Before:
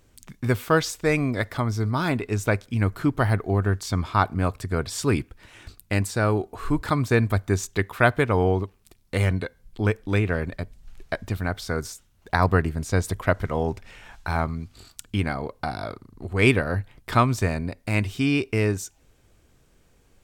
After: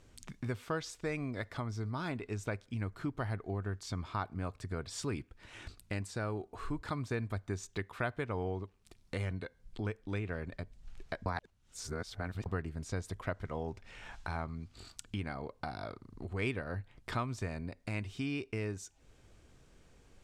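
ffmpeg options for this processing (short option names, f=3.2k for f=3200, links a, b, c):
-filter_complex "[0:a]asplit=3[a][b][c];[a]atrim=end=11.262[d];[b]atrim=start=11.258:end=12.462,asetpts=PTS-STARTPTS,areverse[e];[c]atrim=start=12.458[f];[d][e]acrossfade=d=0.004:c1=hsin:c2=hsin[g];[g][f]acrossfade=d=0.004:c1=hsin:c2=hsin,lowpass=8.4k,acompressor=threshold=-43dB:ratio=2,volume=-1.5dB"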